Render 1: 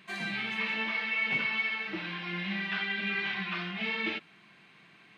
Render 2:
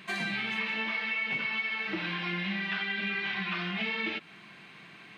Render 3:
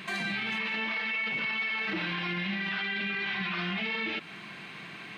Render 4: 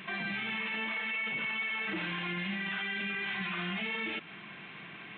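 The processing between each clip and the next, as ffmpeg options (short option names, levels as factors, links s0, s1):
-af "acompressor=threshold=0.0141:ratio=5,volume=2.24"
-af "alimiter=level_in=2.37:limit=0.0631:level=0:latency=1:release=11,volume=0.422,volume=2.24"
-af "aresample=8000,aresample=44100,volume=0.708"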